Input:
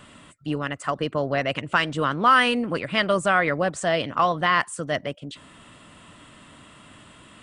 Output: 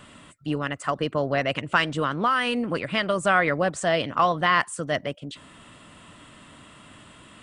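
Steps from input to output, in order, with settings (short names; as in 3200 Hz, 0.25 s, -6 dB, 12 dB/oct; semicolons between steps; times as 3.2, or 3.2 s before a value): 1.91–3.23 compressor 4:1, threshold -20 dBFS, peak gain reduction 7 dB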